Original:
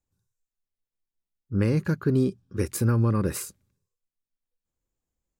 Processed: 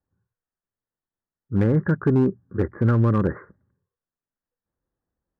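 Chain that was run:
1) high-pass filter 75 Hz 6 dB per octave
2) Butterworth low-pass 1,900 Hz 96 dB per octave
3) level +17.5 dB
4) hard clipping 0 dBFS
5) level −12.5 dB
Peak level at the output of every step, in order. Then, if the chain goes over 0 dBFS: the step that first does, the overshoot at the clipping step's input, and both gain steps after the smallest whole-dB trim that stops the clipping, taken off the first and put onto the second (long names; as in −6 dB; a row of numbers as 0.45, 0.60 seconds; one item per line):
−13.0, −13.5, +4.0, 0.0, −12.5 dBFS
step 3, 4.0 dB
step 3 +13.5 dB, step 5 −8.5 dB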